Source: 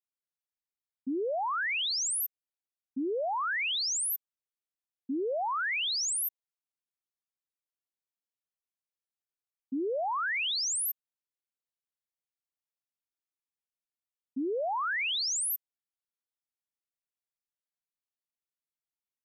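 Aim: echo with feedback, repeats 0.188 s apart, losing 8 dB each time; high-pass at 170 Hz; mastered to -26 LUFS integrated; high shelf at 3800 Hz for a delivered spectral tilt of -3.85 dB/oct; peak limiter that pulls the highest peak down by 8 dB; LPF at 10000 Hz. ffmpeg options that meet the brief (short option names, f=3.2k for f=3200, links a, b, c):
-af "highpass=170,lowpass=10k,highshelf=f=3.8k:g=-8,alimiter=level_in=12dB:limit=-24dB:level=0:latency=1,volume=-12dB,aecho=1:1:188|376|564|752|940:0.398|0.159|0.0637|0.0255|0.0102,volume=12dB"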